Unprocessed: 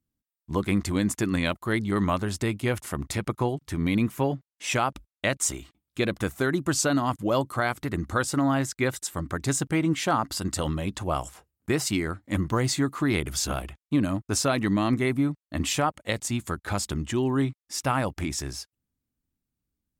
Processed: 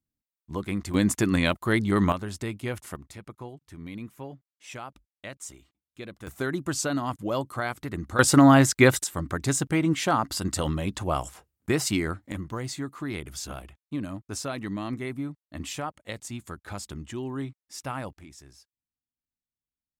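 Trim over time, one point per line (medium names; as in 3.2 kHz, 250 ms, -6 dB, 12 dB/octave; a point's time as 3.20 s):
-5.5 dB
from 0.94 s +2.5 dB
from 2.12 s -5.5 dB
from 2.96 s -14.5 dB
from 6.27 s -4 dB
from 8.19 s +8.5 dB
from 9.04 s +0.5 dB
from 12.32 s -8.5 dB
from 18.13 s -18 dB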